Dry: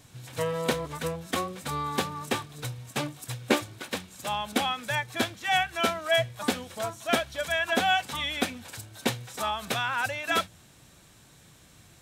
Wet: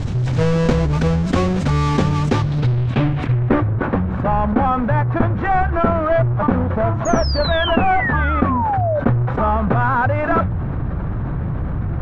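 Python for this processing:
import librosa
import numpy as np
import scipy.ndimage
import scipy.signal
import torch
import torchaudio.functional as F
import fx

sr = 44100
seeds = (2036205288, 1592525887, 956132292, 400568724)

y = fx.halfwave_hold(x, sr)
y = fx.filter_sweep_lowpass(y, sr, from_hz=6700.0, to_hz=1300.0, start_s=2.27, end_s=3.78, q=1.5)
y = fx.spec_paint(y, sr, seeds[0], shape='fall', start_s=7.05, length_s=1.95, low_hz=570.0, high_hz=6800.0, level_db=-29.0)
y = fx.riaa(y, sr, side='playback')
y = fx.env_flatten(y, sr, amount_pct=70)
y = F.gain(torch.from_numpy(y), -4.0).numpy()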